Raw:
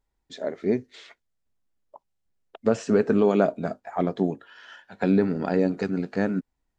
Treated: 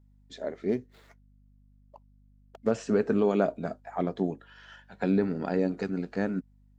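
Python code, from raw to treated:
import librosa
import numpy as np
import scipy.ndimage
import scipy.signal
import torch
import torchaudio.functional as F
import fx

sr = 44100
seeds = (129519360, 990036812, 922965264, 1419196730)

y = fx.median_filter(x, sr, points=15, at=(0.69, 2.71))
y = fx.add_hum(y, sr, base_hz=50, snr_db=29)
y = F.gain(torch.from_numpy(y), -4.5).numpy()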